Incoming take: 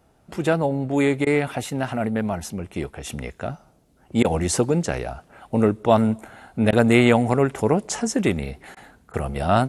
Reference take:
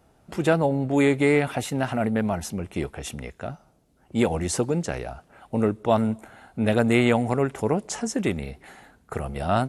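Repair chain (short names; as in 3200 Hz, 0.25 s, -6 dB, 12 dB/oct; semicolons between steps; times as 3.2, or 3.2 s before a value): interpolate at 1.25/4.23/6.71/8.75/9.12, 15 ms; gain 0 dB, from 3.09 s -4 dB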